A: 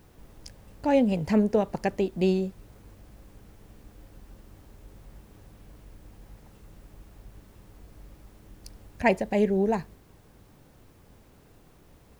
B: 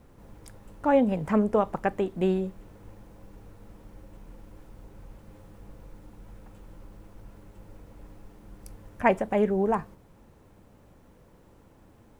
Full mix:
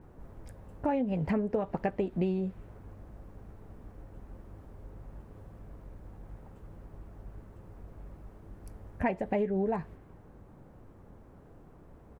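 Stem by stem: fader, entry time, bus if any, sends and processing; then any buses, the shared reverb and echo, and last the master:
+2.0 dB, 0.00 s, no send, LPF 2100 Hz 12 dB/oct; low-pass opened by the level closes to 1300 Hz, open at -21 dBFS
-9.5 dB, 12 ms, no send, dry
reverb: off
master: compressor 10:1, threshold -26 dBFS, peak gain reduction 12 dB

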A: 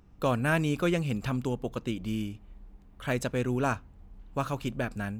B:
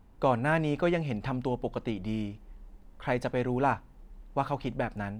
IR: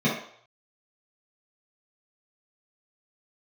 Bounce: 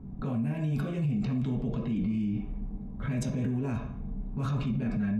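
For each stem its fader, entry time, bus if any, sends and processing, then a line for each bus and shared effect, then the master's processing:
-1.5 dB, 0.00 s, send -11 dB, low-pass opened by the level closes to 810 Hz, open at -24.5 dBFS; low shelf 84 Hz +8 dB; negative-ratio compressor -36 dBFS, ratio -1
-12.5 dB, 0.00 s, send -8 dB, compressor, threshold -33 dBFS, peak gain reduction 12.5 dB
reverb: on, RT60 0.60 s, pre-delay 3 ms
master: limiter -23 dBFS, peak gain reduction 11 dB

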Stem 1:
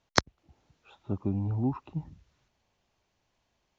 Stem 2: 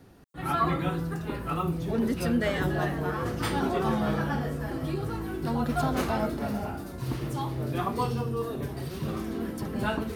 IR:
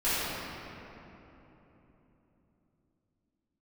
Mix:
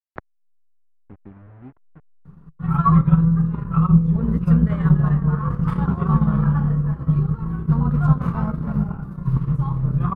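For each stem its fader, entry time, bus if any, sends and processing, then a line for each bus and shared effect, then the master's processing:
-13.0 dB, 0.00 s, no send, level-crossing sampler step -29 dBFS; LPF 1800 Hz 24 dB/oct
+3.0 dB, 2.25 s, no send, octaver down 2 oct, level -1 dB; EQ curve 100 Hz 0 dB, 160 Hz +15 dB, 310 Hz -14 dB, 460 Hz -5 dB, 720 Hz -12 dB, 1100 Hz +5 dB, 1700 Hz -9 dB, 4900 Hz -22 dB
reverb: off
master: transient shaper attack +3 dB, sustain -8 dB

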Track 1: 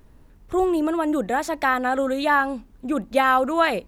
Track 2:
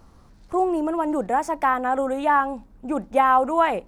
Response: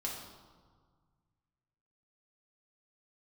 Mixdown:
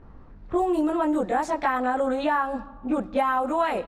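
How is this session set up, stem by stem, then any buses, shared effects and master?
+1.5 dB, 0.00 s, send -19 dB, auto duck -10 dB, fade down 1.85 s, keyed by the second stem
+0.5 dB, 20 ms, no send, dry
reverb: on, RT60 1.7 s, pre-delay 4 ms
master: low-pass opened by the level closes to 1800 Hz, open at -14 dBFS; compressor, threshold -20 dBFS, peak gain reduction 8.5 dB

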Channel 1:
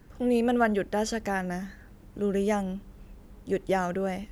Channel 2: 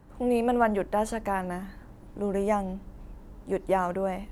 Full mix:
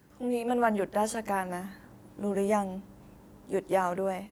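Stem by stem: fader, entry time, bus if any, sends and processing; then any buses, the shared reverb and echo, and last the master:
-4.0 dB, 0.00 s, no send, auto duck -11 dB, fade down 0.45 s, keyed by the second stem
-8.5 dB, 22 ms, polarity flipped, no send, AGC gain up to 7 dB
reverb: off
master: HPF 100 Hz 12 dB/oct; high shelf 4500 Hz +6.5 dB

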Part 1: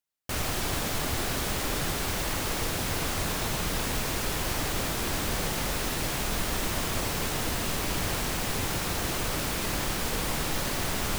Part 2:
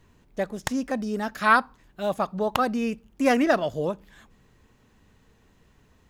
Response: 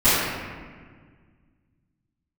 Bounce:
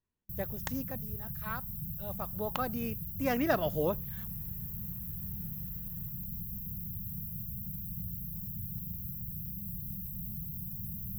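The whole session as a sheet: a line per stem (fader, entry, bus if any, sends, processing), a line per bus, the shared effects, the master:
-2.5 dB, 0.00 s, no send, FFT band-reject 210–12000 Hz; HPF 120 Hz 6 dB/oct
0.82 s -10.5 dB -> 1.1 s -21.5 dB -> 1.91 s -21.5 dB -> 2.38 s -10.5 dB -> 3.31 s -10.5 dB -> 3.8 s -3 dB, 0.00 s, no send, dry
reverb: off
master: gate with hold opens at -33 dBFS

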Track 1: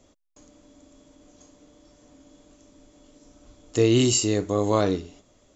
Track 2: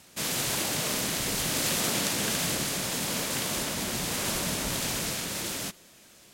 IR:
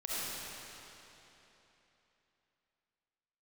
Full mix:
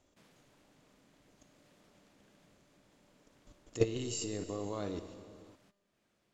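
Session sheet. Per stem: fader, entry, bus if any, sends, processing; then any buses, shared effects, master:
+2.0 dB, 0.00 s, send -14.5 dB, level quantiser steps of 17 dB
-9.5 dB, 0.00 s, no send, LPF 1500 Hz 6 dB/oct; compressor 1.5:1, threshold -52 dBFS, peak gain reduction 8.5 dB; auto duck -9 dB, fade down 0.45 s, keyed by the first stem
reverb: on, RT60 3.4 s, pre-delay 25 ms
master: resonator 200 Hz, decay 1.6 s, mix 60%

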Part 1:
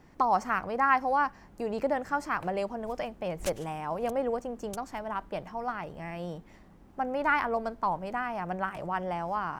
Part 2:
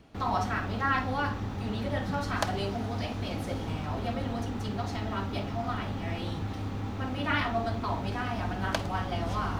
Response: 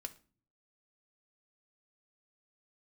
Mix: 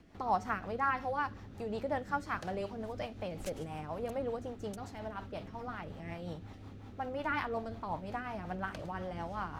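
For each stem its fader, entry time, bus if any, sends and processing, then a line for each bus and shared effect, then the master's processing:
-4.5 dB, 0.00 s, no send, dry
-1.0 dB, 0.00 s, polarity flipped, no send, auto duck -12 dB, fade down 0.20 s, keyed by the first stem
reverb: off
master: rotary speaker horn 5.5 Hz

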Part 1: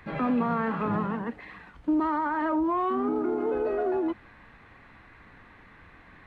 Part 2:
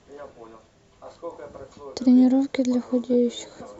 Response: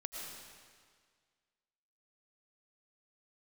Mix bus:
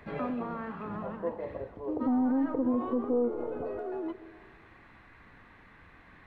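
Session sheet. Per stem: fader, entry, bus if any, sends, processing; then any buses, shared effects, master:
-4.0 dB, 0.00 s, send -15.5 dB, auto duck -9 dB, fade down 0.45 s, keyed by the second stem
+1.5 dB, 0.00 s, send -14 dB, soft clip -17 dBFS, distortion -13 dB; inverse Chebyshev low-pass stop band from 3000 Hz, stop band 60 dB; bell 210 Hz -11.5 dB 0.23 oct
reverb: on, RT60 1.8 s, pre-delay 70 ms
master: limiter -21 dBFS, peak gain reduction 8.5 dB

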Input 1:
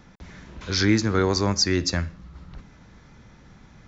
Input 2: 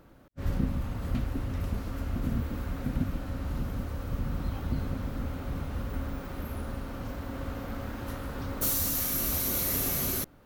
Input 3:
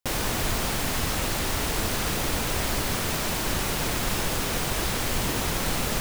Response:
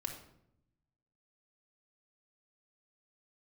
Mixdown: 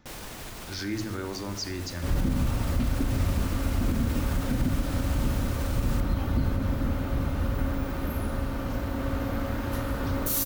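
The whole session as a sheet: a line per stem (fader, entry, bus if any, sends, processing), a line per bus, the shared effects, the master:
-12.0 dB, 0.00 s, bus A, send -4 dB, dry
+2.5 dB, 1.65 s, no bus, send -4 dB, dry
-11.0 dB, 0.00 s, bus A, no send, dry
bus A: 0.0 dB, limiter -30 dBFS, peak gain reduction 12 dB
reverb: on, RT60 0.75 s, pre-delay 3 ms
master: limiter -16.5 dBFS, peak gain reduction 8 dB

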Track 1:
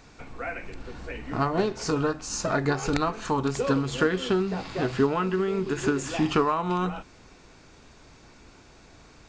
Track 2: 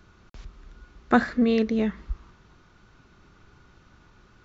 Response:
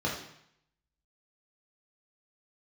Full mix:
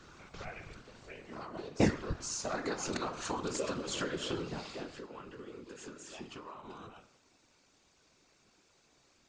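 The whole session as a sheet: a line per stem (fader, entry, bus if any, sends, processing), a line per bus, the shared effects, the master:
1.9 s -13.5 dB -> 2.48 s -6 dB -> 4.48 s -6 dB -> 5.05 s -17.5 dB, 0.00 s, send -17.5 dB, high shelf 2700 Hz +10 dB; de-hum 69.73 Hz, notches 35; compressor, threshold -27 dBFS, peak gain reduction 10.5 dB
+2.0 dB, 0.00 s, muted 0.81–1.8, no send, dry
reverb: on, RT60 0.70 s, pre-delay 3 ms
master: low shelf 180 Hz -7.5 dB; whisperiser

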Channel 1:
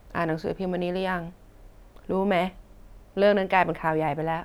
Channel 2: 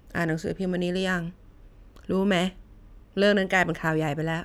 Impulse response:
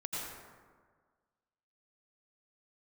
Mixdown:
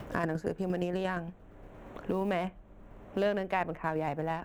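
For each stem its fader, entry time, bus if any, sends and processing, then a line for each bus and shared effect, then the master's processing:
-8.0 dB, 0.00 s, no send, Wiener smoothing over 9 samples; short-mantissa float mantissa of 6-bit
-1.5 dB, 0.00 s, no send, dB-ramp tremolo decaying 8.6 Hz, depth 27 dB; auto duck -15 dB, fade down 1.90 s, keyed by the first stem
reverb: off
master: three-band squash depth 70%

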